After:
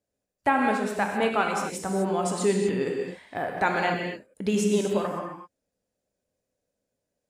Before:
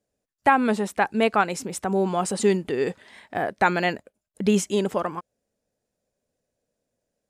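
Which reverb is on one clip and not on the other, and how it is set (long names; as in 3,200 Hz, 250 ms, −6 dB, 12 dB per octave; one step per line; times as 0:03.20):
reverb whose tail is shaped and stops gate 280 ms flat, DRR 0.5 dB
level −5 dB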